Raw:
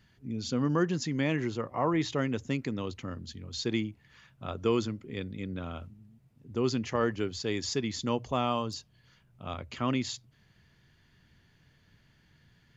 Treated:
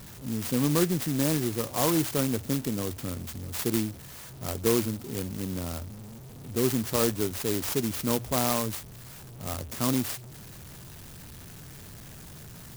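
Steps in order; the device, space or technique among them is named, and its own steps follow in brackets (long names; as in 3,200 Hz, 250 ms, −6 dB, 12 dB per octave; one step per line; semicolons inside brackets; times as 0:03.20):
early CD player with a faulty converter (converter with a step at zero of −42.5 dBFS; converter with an unsteady clock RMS 0.15 ms)
level +2.5 dB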